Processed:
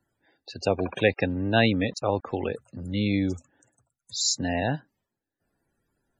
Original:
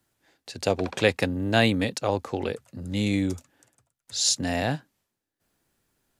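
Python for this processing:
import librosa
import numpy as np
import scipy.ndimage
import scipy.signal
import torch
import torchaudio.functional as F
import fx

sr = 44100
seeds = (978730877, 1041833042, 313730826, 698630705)

y = fx.sample_gate(x, sr, floor_db=-44.5, at=(0.92, 2.33))
y = fx.spec_topn(y, sr, count=64)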